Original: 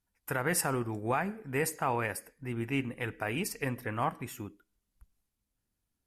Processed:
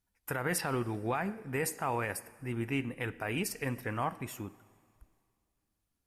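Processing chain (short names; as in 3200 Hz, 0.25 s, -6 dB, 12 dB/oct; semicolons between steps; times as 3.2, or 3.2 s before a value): 0.58–1.15 resonant high shelf 5600 Hz -11.5 dB, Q 3; limiter -21.5 dBFS, peak gain reduction 4.5 dB; plate-style reverb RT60 2.3 s, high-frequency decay 1×, DRR 19.5 dB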